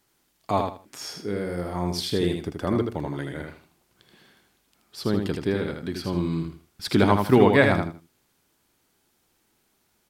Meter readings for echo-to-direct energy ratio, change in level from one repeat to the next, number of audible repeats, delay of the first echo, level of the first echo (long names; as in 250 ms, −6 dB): −5.0 dB, −13.0 dB, 3, 79 ms, −5.0 dB